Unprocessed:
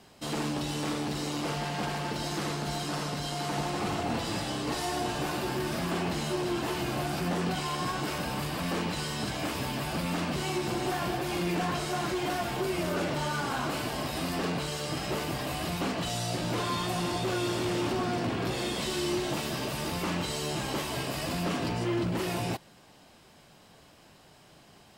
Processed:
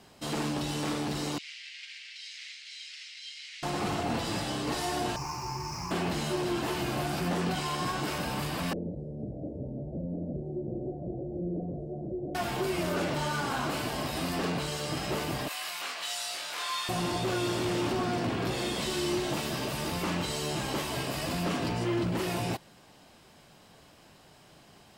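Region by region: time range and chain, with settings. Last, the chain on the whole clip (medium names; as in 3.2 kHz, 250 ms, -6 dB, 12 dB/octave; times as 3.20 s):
1.38–3.63 s: elliptic high-pass 2.1 kHz, stop band 60 dB + distance through air 120 m
5.16–5.91 s: median filter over 5 samples + FFT filter 130 Hz 0 dB, 220 Hz -15 dB, 400 Hz -11 dB, 640 Hz -19 dB, 930 Hz +6 dB, 1.6 kHz -15 dB, 2.4 kHz -3 dB, 3.5 kHz -27 dB, 5.4 kHz +12 dB, 8.4 kHz -3 dB
8.73–12.35 s: elliptic low-pass 580 Hz, stop band 50 dB + peaking EQ 270 Hz -3 dB 1.8 oct
15.48–16.89 s: high-pass 1.3 kHz + doubling 24 ms -3 dB
whole clip: none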